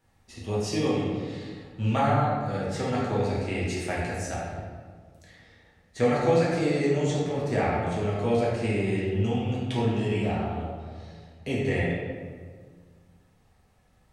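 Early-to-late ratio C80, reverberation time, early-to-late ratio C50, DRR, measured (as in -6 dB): 1.5 dB, 1.7 s, -1.0 dB, -6.5 dB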